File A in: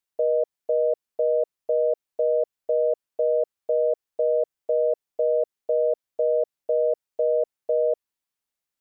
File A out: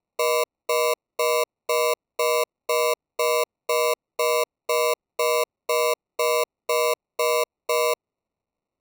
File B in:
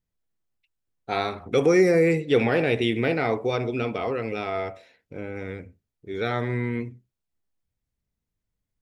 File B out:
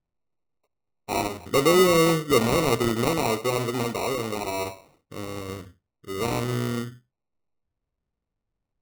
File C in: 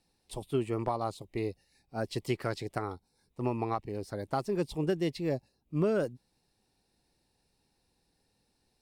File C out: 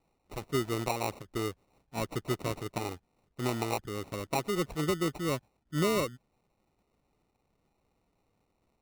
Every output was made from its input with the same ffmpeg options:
ffmpeg -i in.wav -af "acrusher=samples=27:mix=1:aa=0.000001" out.wav

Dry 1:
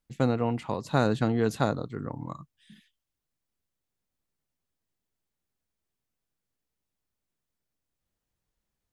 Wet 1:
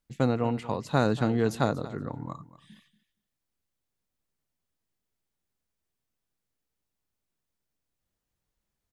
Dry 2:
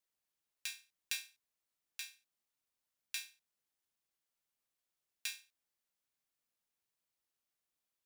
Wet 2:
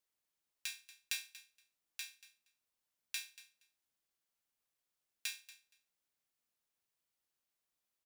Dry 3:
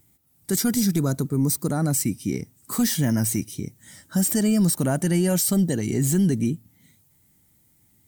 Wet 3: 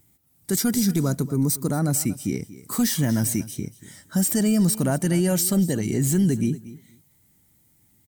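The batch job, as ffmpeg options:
ffmpeg -i in.wav -af "aecho=1:1:235|470:0.141|0.0212" out.wav

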